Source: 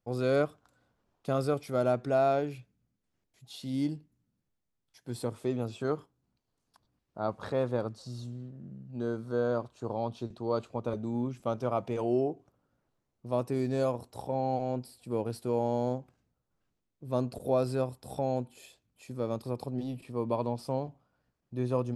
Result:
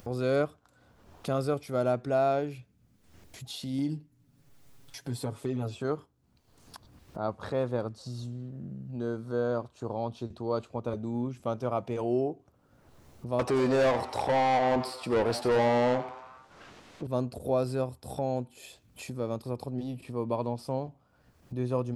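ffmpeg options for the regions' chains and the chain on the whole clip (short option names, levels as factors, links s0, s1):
-filter_complex "[0:a]asettb=1/sr,asplit=3[s0][s1][s2];[s0]atrim=end=3.784[s3];[s1]atrim=start=3.78:end=5.75,asetpts=PTS-STARTPTS,afade=t=in:d=0.004:c=qsin,afade=t=out:st=1.966:d=0.004:c=qsin,aecho=1:1:7.2:0.8,atrim=end_sample=86877,acompressor=threshold=0.0447:ratio=3:attack=3.2:release=140:knee=1:detection=peak[s4];[s2]atrim=start=5.746[s5];[s3][s4]acrossfade=d=0.004:c1=hsin:c2=qsin[s6];[s6][s5]acrossfade=d=0.004:c1=qsin:c2=hsin,asettb=1/sr,asplit=3[s7][s8][s9];[s7]atrim=end=13.394[s10];[s8]atrim=start=13.39:end=17.07,asetpts=PTS-STARTPTS,afade=t=in:d=0.004:c=qsin,afade=t=out:st=3.676:d=0.004:c=qsin,asplit=2[s11][s12];[s12]highpass=f=720:p=1,volume=17.8,asoftclip=type=tanh:threshold=0.133[s13];[s11][s13]amix=inputs=2:normalize=0,lowpass=f=4500:p=1,volume=0.501,asplit=6[s14][s15][s16][s17][s18][s19];[s15]adelay=89,afreqshift=130,volume=0.224[s20];[s16]adelay=178,afreqshift=260,volume=0.112[s21];[s17]adelay=267,afreqshift=390,volume=0.0562[s22];[s18]adelay=356,afreqshift=520,volume=0.0279[s23];[s19]adelay=445,afreqshift=650,volume=0.014[s24];[s14][s20][s21][s22][s23][s24]amix=inputs=6:normalize=0,atrim=end_sample=162288,adynamicsmooth=sensitivity=7.5:basefreq=7800[s25];[s9]atrim=start=17.066[s26];[s10][s25]acrossfade=d=0.004:c1=hsin:c2=qsin[s27];[s27][s26]acrossfade=d=0.004:c1=qsin:c2=hsin,acompressor=mode=upward:threshold=0.0224:ratio=2.5,equalizer=f=80:w=5.7:g=10.5"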